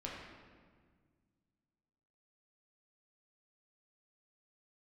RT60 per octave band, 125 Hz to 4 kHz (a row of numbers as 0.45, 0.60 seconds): 2.7, 2.5, 1.8, 1.6, 1.4, 1.1 seconds